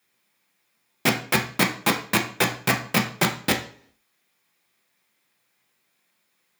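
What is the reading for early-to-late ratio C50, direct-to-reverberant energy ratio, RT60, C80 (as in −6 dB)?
10.0 dB, 1.0 dB, 0.55 s, 14.5 dB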